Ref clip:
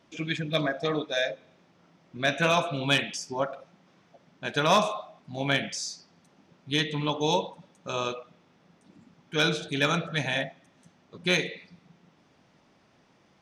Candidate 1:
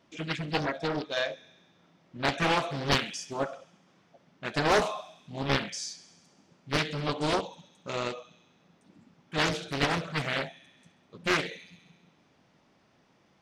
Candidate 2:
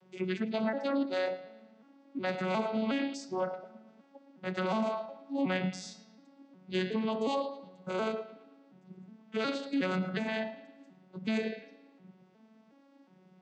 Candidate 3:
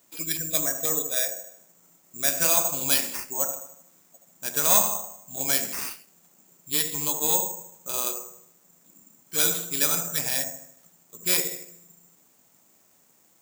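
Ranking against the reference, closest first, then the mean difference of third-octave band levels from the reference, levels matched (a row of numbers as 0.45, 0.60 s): 1, 2, 3; 3.5, 7.5, 12.0 dB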